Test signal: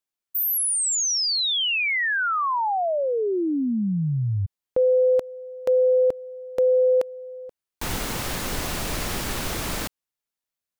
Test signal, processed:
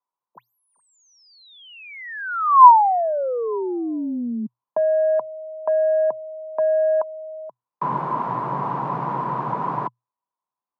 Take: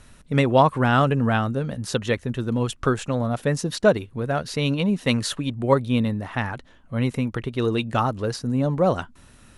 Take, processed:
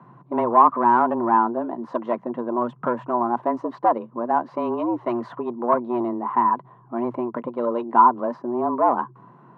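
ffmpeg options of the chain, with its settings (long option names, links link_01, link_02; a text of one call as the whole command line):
ffmpeg -i in.wav -af "asoftclip=type=tanh:threshold=-18dB,afreqshift=120,lowpass=frequency=1000:width_type=q:width=12,volume=-1.5dB" out.wav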